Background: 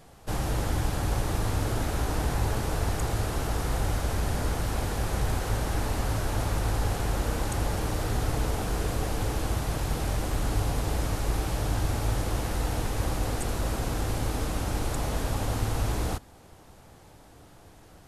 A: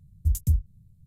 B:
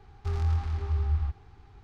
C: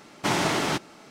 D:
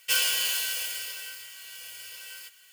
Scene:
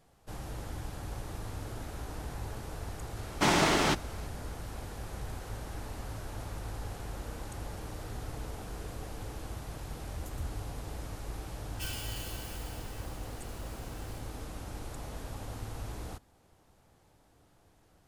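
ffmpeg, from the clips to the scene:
ffmpeg -i bed.wav -i cue0.wav -i cue1.wav -i cue2.wav -i cue3.wav -filter_complex "[0:a]volume=-12.5dB[link_01];[3:a]atrim=end=1.1,asetpts=PTS-STARTPTS,volume=-1dB,afade=type=in:duration=0.004:curve=hsin,afade=type=out:start_time=1.096:duration=0.004:curve=hsin,adelay=139797S[link_02];[1:a]atrim=end=1.06,asetpts=PTS-STARTPTS,volume=-17.5dB,afade=type=in:duration=0.004:curve=hsin,afade=type=out:start_time=1.056:duration=0.004:curve=hsin,adelay=9910[link_03];[4:a]atrim=end=2.72,asetpts=PTS-STARTPTS,volume=-16.5dB,afade=type=in:duration=0.004:curve=hsin,afade=type=out:start_time=2.716:duration=0.004:curve=hsin,adelay=11710[link_04];[link_01][link_02][link_03][link_04]amix=inputs=4:normalize=0" out.wav

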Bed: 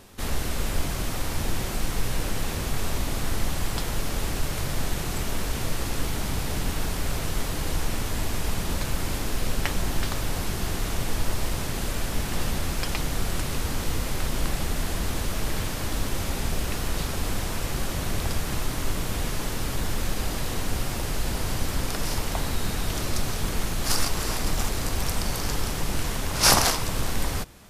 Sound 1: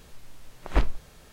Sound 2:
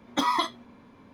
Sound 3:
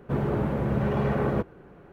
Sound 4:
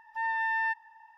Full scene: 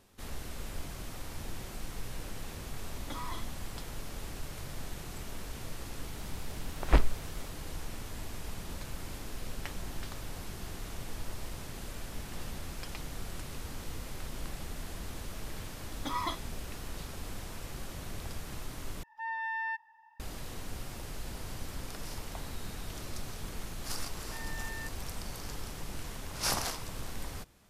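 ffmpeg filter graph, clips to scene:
ffmpeg -i bed.wav -i cue0.wav -i cue1.wav -i cue2.wav -i cue3.wav -filter_complex "[2:a]asplit=2[link_01][link_02];[4:a]asplit=2[link_03][link_04];[0:a]volume=-13.5dB[link_05];[link_01]acompressor=threshold=-32dB:ratio=6:attack=3.2:release=140:knee=1:detection=peak[link_06];[link_02]dynaudnorm=framelen=140:gausssize=3:maxgain=7dB[link_07];[link_03]highpass=frequency=43:poles=1[link_08];[link_04]equalizer=frequency=790:width=1.5:gain=-12[link_09];[link_05]asplit=2[link_10][link_11];[link_10]atrim=end=19.034[link_12];[link_08]atrim=end=1.17,asetpts=PTS-STARTPTS,volume=-6dB[link_13];[link_11]atrim=start=20.196[link_14];[link_06]atrim=end=1.13,asetpts=PTS-STARTPTS,volume=-7dB,afade=type=in:duration=0.004:curve=hsin,afade=type=out:start_time=1.126:duration=0.004:curve=hsin,adelay=2930[link_15];[1:a]atrim=end=1.32,asetpts=PTS-STARTPTS,volume=-0.5dB,afade=type=in:duration=0.004:curve=hsin,afade=type=out:start_time=1.316:duration=0.004:curve=hsin,adelay=6170[link_16];[link_07]atrim=end=1.13,asetpts=PTS-STARTPTS,volume=-16dB,afade=type=in:duration=0.004:curve=hsin,afade=type=out:start_time=1.126:duration=0.004:curve=hsin,adelay=700308S[link_17];[link_09]atrim=end=1.17,asetpts=PTS-STARTPTS,volume=-12dB,afade=type=in:duration=0.004:curve=hsin,afade=type=out:start_time=1.166:duration=0.004:curve=hsin,adelay=24150[link_18];[link_12][link_13]acrossfade=duration=0.004:curve1=hsin:curve2=hsin[link_19];[link_19][link_14]acrossfade=duration=0.004:curve1=hsin:curve2=hsin[link_20];[link_20][link_15][link_16][link_17][link_18]amix=inputs=5:normalize=0" out.wav

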